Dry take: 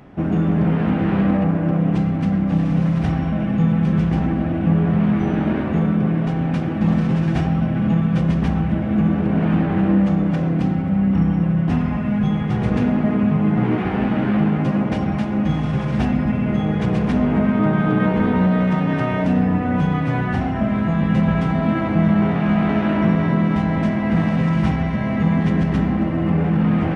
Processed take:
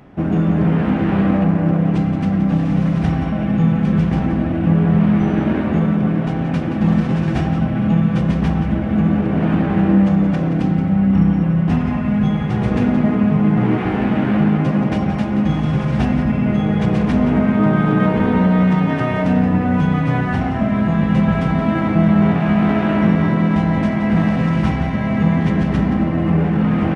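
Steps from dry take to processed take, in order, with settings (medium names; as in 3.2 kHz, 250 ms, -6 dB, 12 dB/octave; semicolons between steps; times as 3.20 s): in parallel at -11 dB: crossover distortion -34.5 dBFS; on the sum: delay 174 ms -10.5 dB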